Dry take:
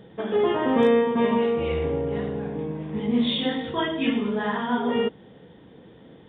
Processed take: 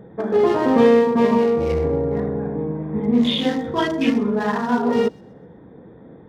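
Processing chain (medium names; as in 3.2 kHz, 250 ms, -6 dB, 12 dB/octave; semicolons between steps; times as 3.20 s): local Wiener filter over 15 samples; feedback echo behind a high-pass 127 ms, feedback 33%, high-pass 3.5 kHz, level -20 dB; trim +5.5 dB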